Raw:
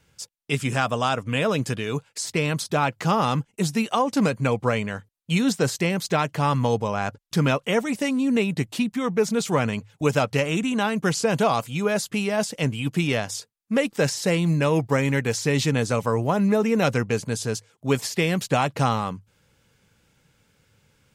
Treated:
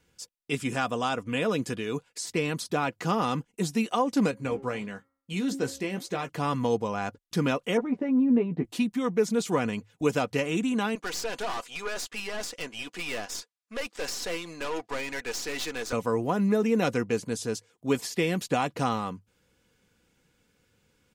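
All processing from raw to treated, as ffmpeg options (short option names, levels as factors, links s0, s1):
-filter_complex "[0:a]asettb=1/sr,asplit=3[s0][s1][s2];[s0]atrim=end=4.314[s3];[s1]atrim=start=4.31:end=6.29,asetpts=PTS-STARTPTS,afade=t=in:d=0.004:c=qsin,afade=t=out:st=1.976:d=0.004:c=qsin,bandreject=f=271.6:t=h:w=4,bandreject=f=543.2:t=h:w=4,bandreject=f=814.8:t=h:w=4,bandreject=f=1086.4:t=h:w=4,bandreject=f=1358:t=h:w=4,bandreject=f=1629.6:t=h:w=4,bandreject=f=1901.2:t=h:w=4,bandreject=f=2172.8:t=h:w=4,flanger=delay=1.4:depth=7.3:regen=-86:speed=1.6:shape=sinusoidal,asplit=2[s4][s5];[s5]adelay=15,volume=0.398[s6];[s4][s6]amix=inputs=2:normalize=0,atrim=end_sample=87318[s7];[s2]atrim=start=6.286[s8];[s3][s7]acrossfade=d=0.004:c1=hsin:c2=qsin[s9];[s9][s8]acrossfade=d=0.004:c1=qsin:c2=hsin,asettb=1/sr,asplit=3[s10][s11][s12];[s10]atrim=end=7.774[s13];[s11]atrim=start=7.77:end=8.65,asetpts=PTS-STARTPTS,afade=t=in:d=0.004:c=qsin,afade=t=out:st=0.876:d=0.004:c=qsin,lowpass=1100,asplit=2[s14][s15];[s15]adelay=12,volume=0.531[s16];[s14][s16]amix=inputs=2:normalize=0,atrim=end_sample=38808[s17];[s12]atrim=start=8.646[s18];[s13][s17]acrossfade=d=0.004:c1=hsin:c2=qsin[s19];[s19][s18]acrossfade=d=0.004:c1=qsin:c2=hsin,asettb=1/sr,asplit=3[s20][s21][s22];[s20]atrim=end=10.954[s23];[s21]atrim=start=10.95:end=15.93,asetpts=PTS-STARTPTS,afade=t=in:d=0.004:c=qsin,afade=t=out:st=4.976:d=0.004:c=qsin,acontrast=77,highpass=710,lowpass=7400,aeval=exprs='(tanh(15.8*val(0)+0.6)-tanh(0.6))/15.8':c=same[s24];[s22]atrim=start=15.926[s25];[s23][s24]acrossfade=d=0.004:c1=hsin:c2=qsin[s26];[s26][s25]acrossfade=d=0.004:c1=qsin:c2=hsin,equalizer=f=350:t=o:w=0.32:g=9,aecho=1:1:4.1:0.41,volume=0.501"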